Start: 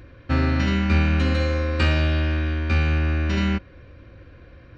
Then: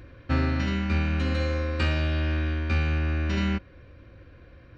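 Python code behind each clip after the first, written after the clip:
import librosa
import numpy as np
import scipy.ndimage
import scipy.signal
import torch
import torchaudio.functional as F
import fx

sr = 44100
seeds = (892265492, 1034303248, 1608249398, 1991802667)

y = fx.rider(x, sr, range_db=10, speed_s=0.5)
y = F.gain(torch.from_numpy(y), -4.5).numpy()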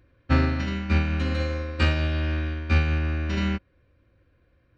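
y = fx.upward_expand(x, sr, threshold_db=-34.0, expansion=2.5)
y = F.gain(torch.from_numpy(y), 6.0).numpy()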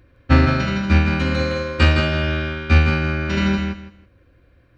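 y = fx.echo_feedback(x, sr, ms=162, feedback_pct=21, wet_db=-5)
y = F.gain(torch.from_numpy(y), 7.0).numpy()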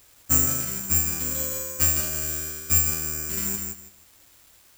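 y = fx.quant_dither(x, sr, seeds[0], bits=8, dither='triangular')
y = fx.doubler(y, sr, ms=23.0, db=-12)
y = (np.kron(y[::6], np.eye(6)[0]) * 6)[:len(y)]
y = F.gain(torch.from_numpy(y), -16.0).numpy()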